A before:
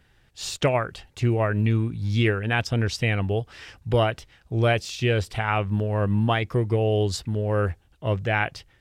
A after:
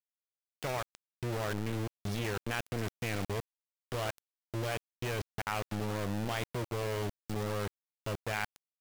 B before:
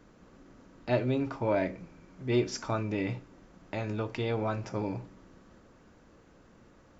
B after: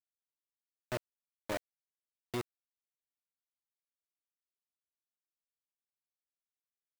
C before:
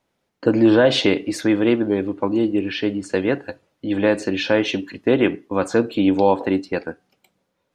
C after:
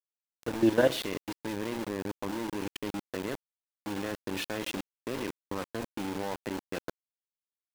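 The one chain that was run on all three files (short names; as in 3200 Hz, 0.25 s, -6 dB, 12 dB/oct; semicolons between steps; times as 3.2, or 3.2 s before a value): feedback echo 0.124 s, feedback 52%, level -17.5 dB; level quantiser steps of 13 dB; sample gate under -25.5 dBFS; gain -7 dB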